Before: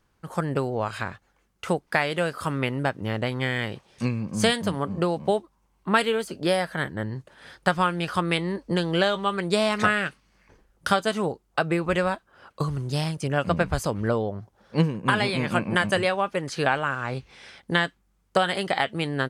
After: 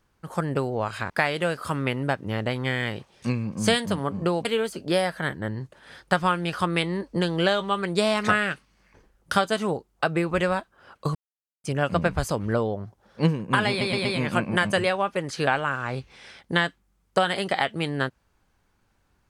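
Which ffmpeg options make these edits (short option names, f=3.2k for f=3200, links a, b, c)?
-filter_complex "[0:a]asplit=8[a][b][c][d][e][f][g][h];[a]atrim=end=1.102[i];[b]atrim=start=1.858:end=5.212[j];[c]atrim=start=5.998:end=12.7,asetpts=PTS-STARTPTS,afade=t=out:st=6.698:d=0.004:c=hsin[k];[d]atrim=start=12.7:end=13.19,asetpts=PTS-STARTPTS,volume=0[l];[e]atrim=start=13.19:end=15.362,asetpts=PTS-STARTPTS,afade=t=in:d=0.004:c=hsin[m];[f]atrim=start=15.238:end=15.362[n];[g]atrim=start=15.238:end=15.362[o];[h]atrim=start=15.238[p];[i][j]acrossfade=d=0.004:c1=hsin:c2=hsin[q];[k][l][m]concat=n=3:v=0:a=1[r];[q][r]acrossfade=d=0.004:c1=hsin:c2=hsin[s];[s][n]acrossfade=d=0.004:c1=hsin:c2=hsin[t];[t][o]acrossfade=d=0.004:c1=hsin:c2=hsin[u];[u][p]acrossfade=d=0.004:c1=hsin:c2=hsin"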